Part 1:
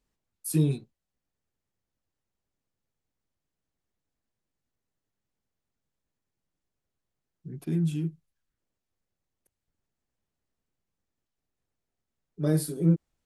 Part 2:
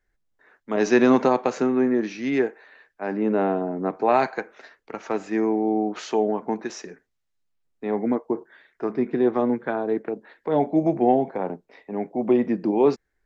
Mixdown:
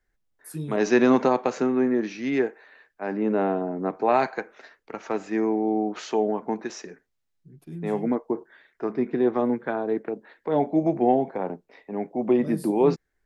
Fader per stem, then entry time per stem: -9.5, -1.5 dB; 0.00, 0.00 s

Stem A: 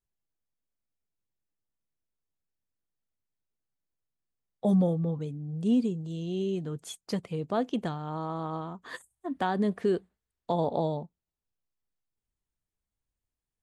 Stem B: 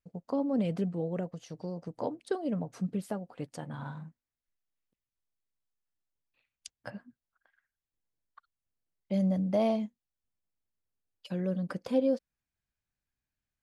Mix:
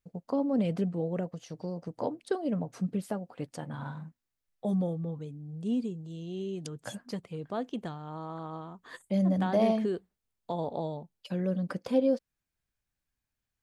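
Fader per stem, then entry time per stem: -5.5, +1.5 dB; 0.00, 0.00 s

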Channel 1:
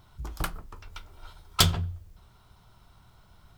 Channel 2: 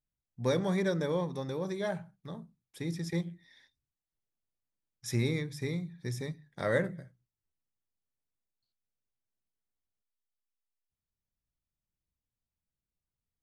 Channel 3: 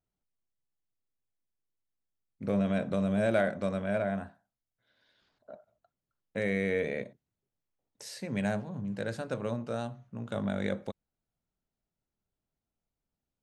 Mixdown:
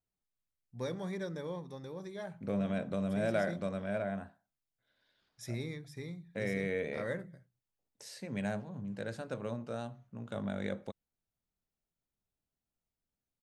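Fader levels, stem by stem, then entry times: off, -9.0 dB, -5.0 dB; off, 0.35 s, 0.00 s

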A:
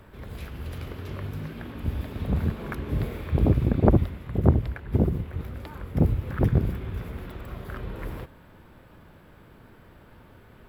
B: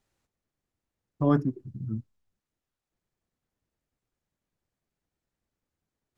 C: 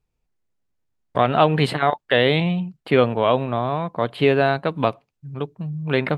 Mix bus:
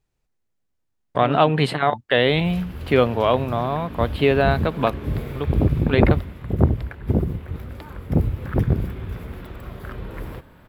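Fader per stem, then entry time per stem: +2.0, -6.5, -0.5 dB; 2.15, 0.00, 0.00 s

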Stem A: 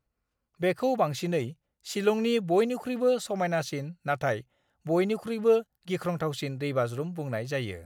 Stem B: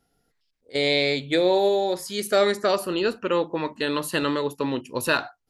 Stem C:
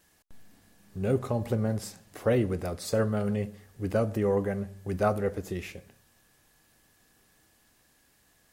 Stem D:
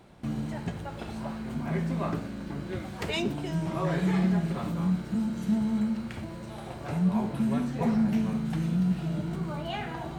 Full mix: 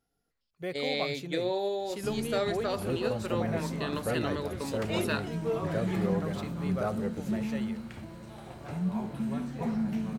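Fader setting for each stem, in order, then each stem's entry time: -10.0, -10.5, -7.0, -5.5 dB; 0.00, 0.00, 1.80, 1.80 s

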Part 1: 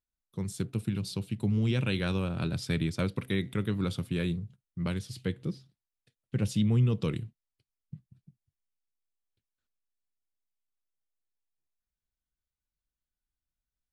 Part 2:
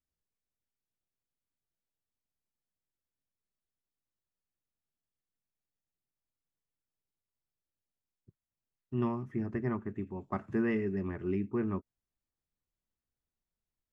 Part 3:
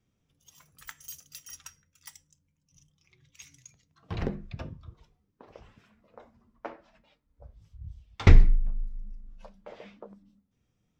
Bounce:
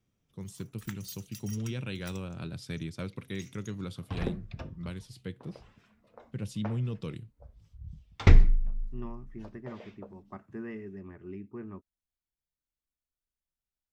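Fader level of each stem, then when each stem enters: -7.5, -9.5, -2.0 dB; 0.00, 0.00, 0.00 s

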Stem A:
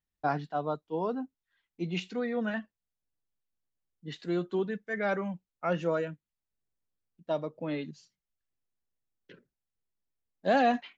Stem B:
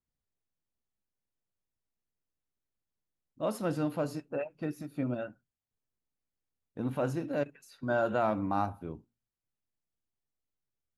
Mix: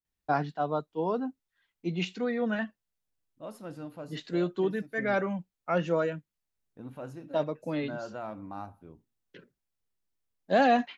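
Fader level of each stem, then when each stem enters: +2.0, -10.0 dB; 0.05, 0.00 s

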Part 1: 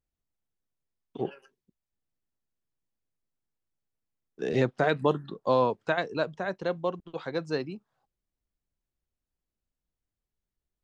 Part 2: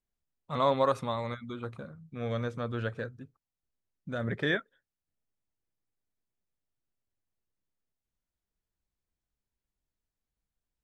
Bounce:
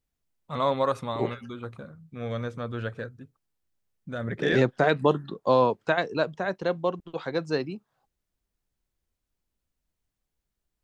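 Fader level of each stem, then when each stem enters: +3.0, +1.0 dB; 0.00, 0.00 s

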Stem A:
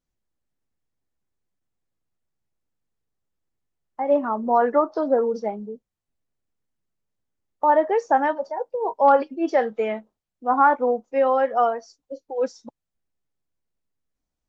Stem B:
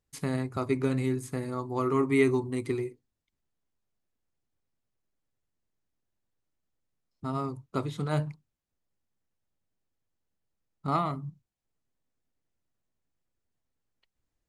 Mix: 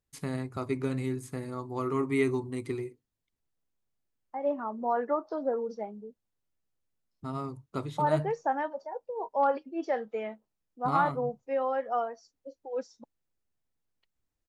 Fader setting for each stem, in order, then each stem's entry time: -10.0, -3.5 dB; 0.35, 0.00 s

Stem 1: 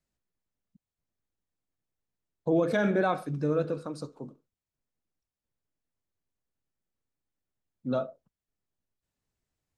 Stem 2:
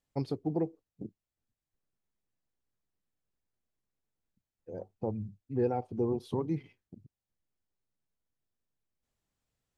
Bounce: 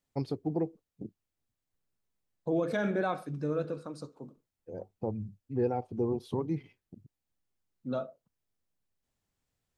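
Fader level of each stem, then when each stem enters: -4.5, 0.0 dB; 0.00, 0.00 s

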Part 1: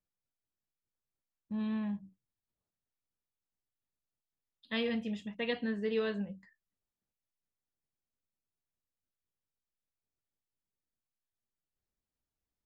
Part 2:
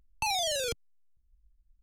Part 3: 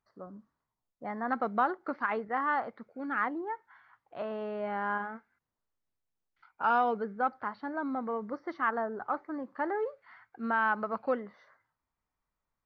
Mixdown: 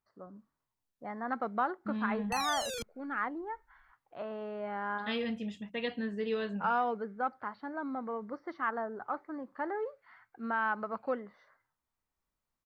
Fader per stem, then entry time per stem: -1.0, -6.5, -3.5 dB; 0.35, 2.10, 0.00 s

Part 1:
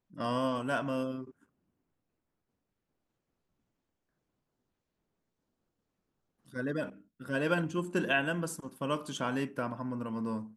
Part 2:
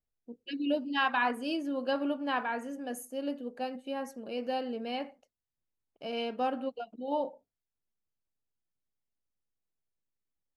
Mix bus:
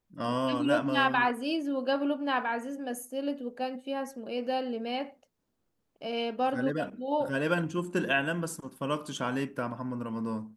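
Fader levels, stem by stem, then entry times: +1.5, +2.5 dB; 0.00, 0.00 s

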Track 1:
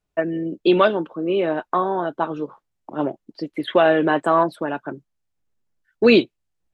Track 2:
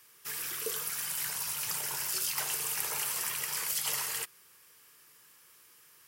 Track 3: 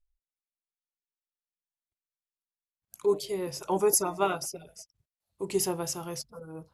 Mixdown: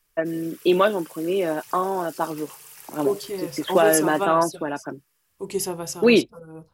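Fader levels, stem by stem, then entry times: -2.5, -11.5, +1.5 dB; 0.00, 0.00, 0.00 s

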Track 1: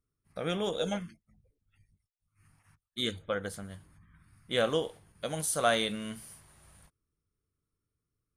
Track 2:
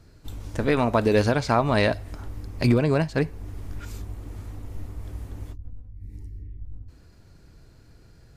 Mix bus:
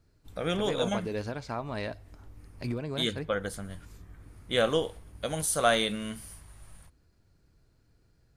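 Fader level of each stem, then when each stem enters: +2.5, -14.0 dB; 0.00, 0.00 s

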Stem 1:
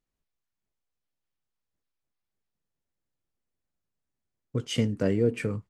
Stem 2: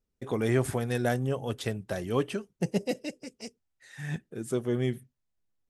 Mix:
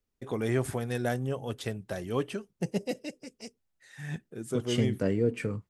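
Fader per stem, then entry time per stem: -2.5, -2.5 dB; 0.00, 0.00 s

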